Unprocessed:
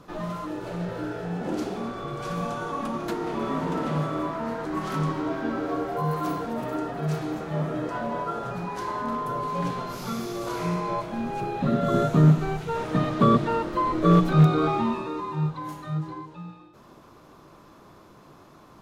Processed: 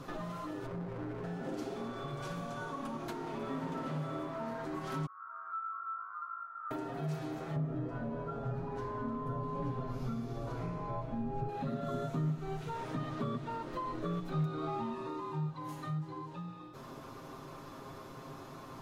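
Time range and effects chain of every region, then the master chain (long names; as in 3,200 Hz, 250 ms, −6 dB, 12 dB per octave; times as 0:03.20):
0:00.66–0:01.24: moving average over 15 samples + windowed peak hold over 33 samples
0:05.06–0:06.71: flat-topped band-pass 1,300 Hz, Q 7.5 + flutter between parallel walls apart 3.1 metres, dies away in 0.44 s
0:07.56–0:11.49: spectral tilt −3.5 dB per octave + notch comb filter 180 Hz
whole clip: downward compressor 3 to 1, threshold −44 dBFS; comb filter 7.5 ms, depth 56%; level +2 dB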